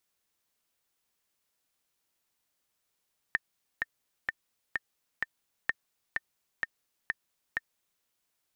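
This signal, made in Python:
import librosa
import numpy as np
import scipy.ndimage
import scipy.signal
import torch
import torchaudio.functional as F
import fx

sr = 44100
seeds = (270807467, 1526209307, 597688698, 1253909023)

y = fx.click_track(sr, bpm=128, beats=5, bars=2, hz=1810.0, accent_db=3.5, level_db=-13.0)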